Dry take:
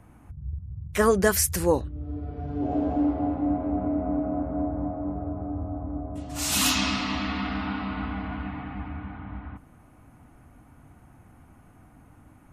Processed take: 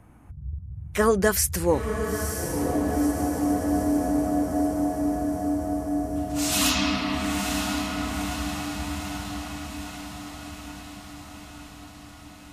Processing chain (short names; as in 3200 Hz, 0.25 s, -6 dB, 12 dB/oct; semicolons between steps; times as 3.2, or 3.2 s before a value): 4.56–6.03 tone controls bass -5 dB, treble +9 dB; on a send: diffused feedback echo 0.952 s, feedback 64%, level -7 dB